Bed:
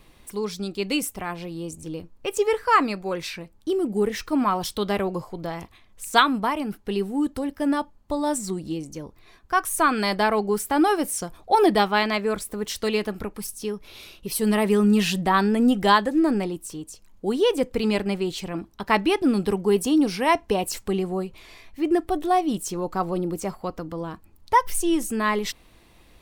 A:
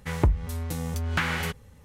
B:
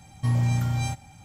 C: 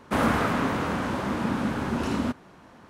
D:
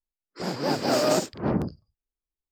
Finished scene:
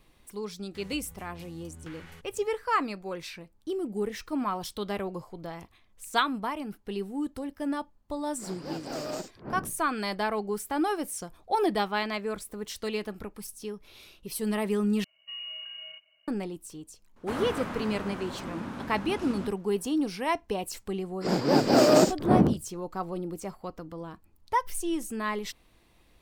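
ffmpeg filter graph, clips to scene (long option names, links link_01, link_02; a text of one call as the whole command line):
ffmpeg -i bed.wav -i cue0.wav -i cue1.wav -i cue2.wav -i cue3.wav -filter_complex "[4:a]asplit=2[link_01][link_02];[0:a]volume=-8dB[link_03];[1:a]acompressor=threshold=-40dB:ratio=6:attack=3.2:release=140:knee=1:detection=peak[link_04];[2:a]lowpass=frequency=2600:width_type=q:width=0.5098,lowpass=frequency=2600:width_type=q:width=0.6013,lowpass=frequency=2600:width_type=q:width=0.9,lowpass=frequency=2600:width_type=q:width=2.563,afreqshift=-3000[link_05];[link_02]equalizer=frequency=280:width=0.5:gain=5.5[link_06];[link_03]asplit=2[link_07][link_08];[link_07]atrim=end=15.044[link_09];[link_05]atrim=end=1.24,asetpts=PTS-STARTPTS,volume=-17.5dB[link_10];[link_08]atrim=start=16.276[link_11];[link_04]atrim=end=1.84,asetpts=PTS-STARTPTS,volume=-6.5dB,afade=type=in:duration=0.1,afade=type=out:start_time=1.74:duration=0.1,adelay=690[link_12];[link_01]atrim=end=2.51,asetpts=PTS-STARTPTS,volume=-13dB,afade=type=in:duration=0.004:curve=hsin,afade=type=out:start_time=2.506:duration=0.004:curve=hsin,adelay=353682S[link_13];[3:a]atrim=end=2.89,asetpts=PTS-STARTPTS,volume=-10.5dB,afade=type=in:duration=0.004:curve=hsin,afade=type=out:start_time=2.886:duration=0.004:curve=hsin,adelay=756756S[link_14];[link_06]atrim=end=2.51,asetpts=PTS-STARTPTS,afade=type=in:duration=0.004:curve=hsin,afade=type=out:start_time=2.506:duration=0.004:curve=hsin,adelay=20850[link_15];[link_09][link_10]acrossfade=duration=0.004:curve1=hsin:curve2=hsin[link_16];[link_16][link_11]acrossfade=duration=0.004:curve1=hsin:curve2=hsin[link_17];[link_17][link_12][link_13][link_14][link_15]amix=inputs=5:normalize=0" out.wav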